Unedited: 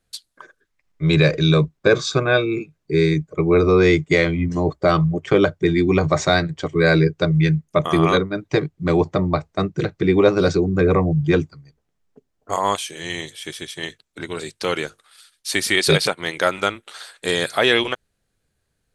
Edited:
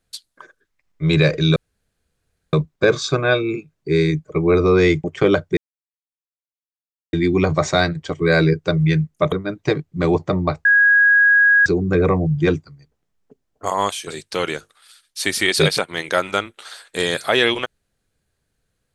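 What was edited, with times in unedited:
1.56 s: insert room tone 0.97 s
4.07–5.14 s: delete
5.67 s: insert silence 1.56 s
7.86–8.18 s: delete
9.51–10.52 s: bleep 1.65 kHz -9.5 dBFS
12.93–14.36 s: delete

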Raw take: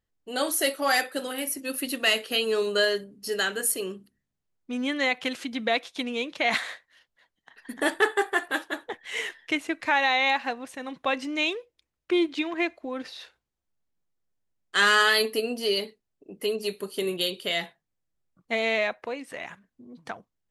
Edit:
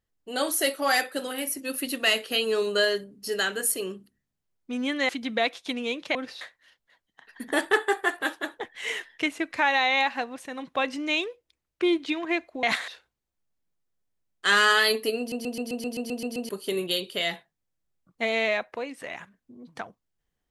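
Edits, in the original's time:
5.09–5.39 s: delete
6.45–6.70 s: swap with 12.92–13.18 s
15.49 s: stutter in place 0.13 s, 10 plays

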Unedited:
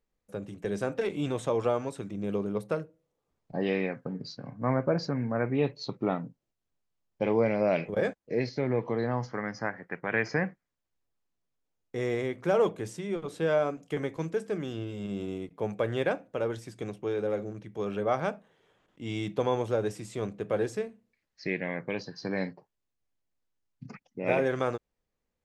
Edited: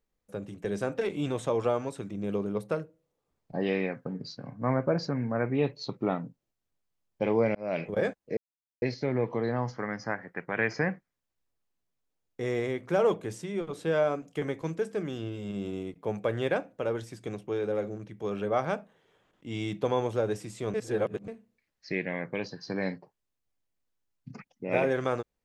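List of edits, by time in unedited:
7.55–7.85 s: fade in
8.37 s: insert silence 0.45 s
20.29–20.83 s: reverse

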